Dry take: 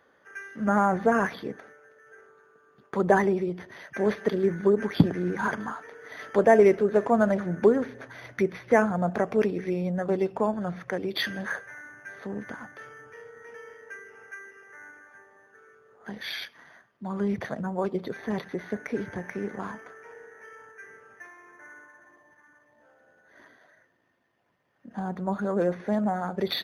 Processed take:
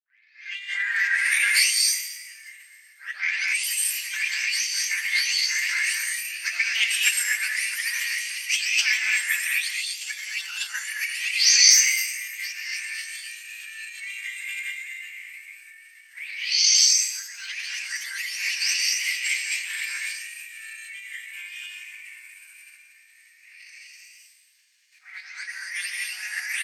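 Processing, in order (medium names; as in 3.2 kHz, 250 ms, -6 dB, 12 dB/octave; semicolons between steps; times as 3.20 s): delay that grows with frequency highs late, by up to 548 ms; transient shaper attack -5 dB, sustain +10 dB; treble shelf 4.9 kHz -7.5 dB; in parallel at -2 dB: compression, threshold -33 dBFS, peak gain reduction 17 dB; on the sum: Chebyshev high-pass 1.3 kHz, order 5; frequency-shifting echo 120 ms, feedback 53%, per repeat +51 Hz, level -14.5 dB; gated-style reverb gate 280 ms rising, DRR -2 dB; formant shift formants +5 st; high-order bell 7.5 kHz +15.5 dB; trim +4.5 dB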